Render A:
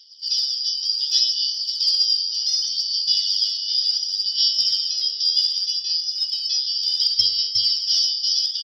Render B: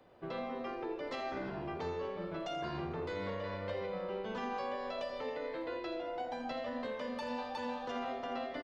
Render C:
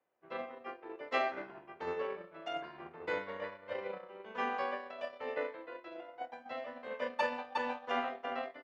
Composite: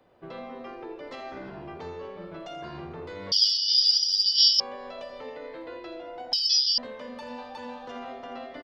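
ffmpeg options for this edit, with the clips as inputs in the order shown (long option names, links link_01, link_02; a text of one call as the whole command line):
ffmpeg -i take0.wav -i take1.wav -filter_complex "[0:a]asplit=2[link_01][link_02];[1:a]asplit=3[link_03][link_04][link_05];[link_03]atrim=end=3.322[link_06];[link_01]atrim=start=3.318:end=4.602[link_07];[link_04]atrim=start=4.598:end=6.332[link_08];[link_02]atrim=start=6.328:end=6.782[link_09];[link_05]atrim=start=6.778[link_10];[link_06][link_07]acrossfade=duration=0.004:curve1=hsin:curve2=hsin[link_11];[link_11][link_08]acrossfade=duration=0.004:curve1=hsin:curve2=hsin[link_12];[link_12][link_09]acrossfade=duration=0.004:curve1=hsin:curve2=hsin[link_13];[link_13][link_10]acrossfade=duration=0.004:curve1=hsin:curve2=hsin" out.wav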